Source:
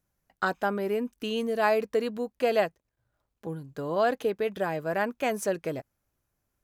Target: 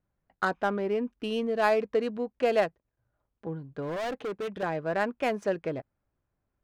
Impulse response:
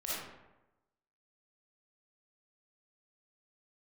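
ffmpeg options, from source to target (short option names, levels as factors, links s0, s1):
-filter_complex "[0:a]equalizer=f=9200:w=0.91:g=-5,adynamicsmooth=sensitivity=5.5:basefreq=2500,asettb=1/sr,asplit=3[s0][s1][s2];[s0]atrim=end=3.824[s3];[s1]atrim=start=3.82:end=4.63,asetpts=PTS-STARTPTS,afade=t=in:d=0.004:c=qsin,afade=t=out:st=0.806:d=0.004:c=qsin,volume=31.6,asoftclip=hard,volume=0.0316[s4];[s2]atrim=start=4.626[s5];[s3][s4]acrossfade=d=0.004:c1=hsin:c2=qsin[s6];[s6][s5]acrossfade=d=0.004:c1=qsin:c2=hsin"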